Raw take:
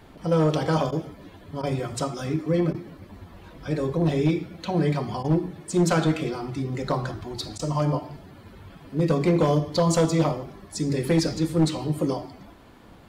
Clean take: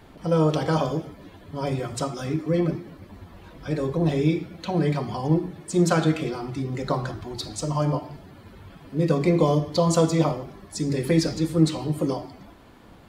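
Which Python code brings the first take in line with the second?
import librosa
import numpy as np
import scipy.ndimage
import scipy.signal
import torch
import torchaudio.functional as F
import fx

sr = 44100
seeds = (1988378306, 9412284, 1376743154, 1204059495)

y = fx.fix_declip(x, sr, threshold_db=-14.0)
y = fx.fix_interpolate(y, sr, at_s=(0.91, 1.62, 2.73, 5.23, 7.58), length_ms=12.0)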